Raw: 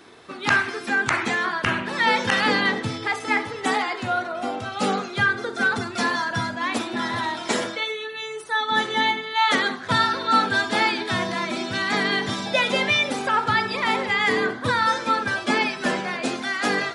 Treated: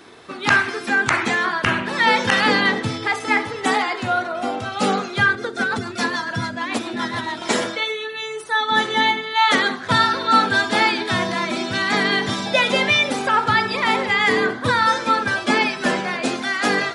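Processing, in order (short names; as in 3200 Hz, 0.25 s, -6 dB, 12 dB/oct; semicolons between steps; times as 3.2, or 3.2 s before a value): 5.35–7.42 rotary speaker horn 7 Hz; gain +3.5 dB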